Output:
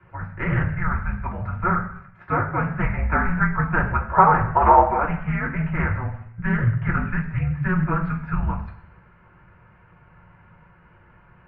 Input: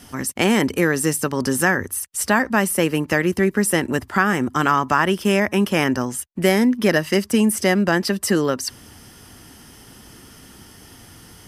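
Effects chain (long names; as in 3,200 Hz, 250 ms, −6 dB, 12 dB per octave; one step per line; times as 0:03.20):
0:02.79–0:04.83: parametric band 1,100 Hz +10 dB 1.6 octaves
convolution reverb RT60 0.70 s, pre-delay 3 ms, DRR −5.5 dB
single-sideband voice off tune −360 Hz 180–2,500 Hz
highs frequency-modulated by the lows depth 0.22 ms
level −11.5 dB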